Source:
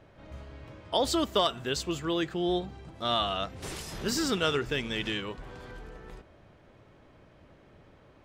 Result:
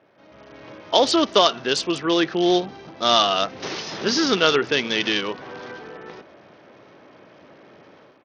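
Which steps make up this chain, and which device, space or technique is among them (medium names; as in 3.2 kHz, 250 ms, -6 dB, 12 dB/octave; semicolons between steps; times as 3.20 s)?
high-pass 58 Hz 12 dB/octave; Bluetooth headset (high-pass 240 Hz 12 dB/octave; level rider gain up to 11 dB; resampled via 16 kHz; SBC 64 kbps 48 kHz)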